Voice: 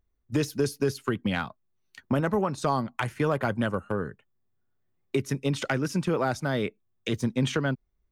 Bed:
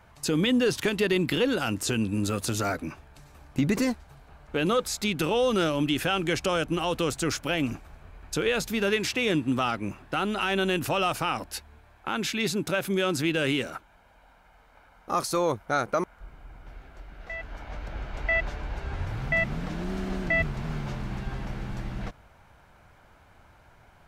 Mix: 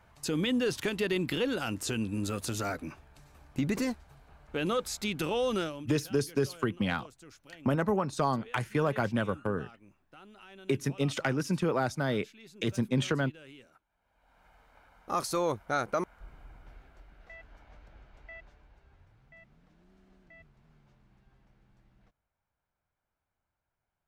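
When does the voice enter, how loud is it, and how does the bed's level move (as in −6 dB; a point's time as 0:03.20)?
5.55 s, −2.5 dB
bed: 0:05.57 −5.5 dB
0:06.00 −25.5 dB
0:13.85 −25.5 dB
0:14.44 −4 dB
0:16.42 −4 dB
0:19.21 −31 dB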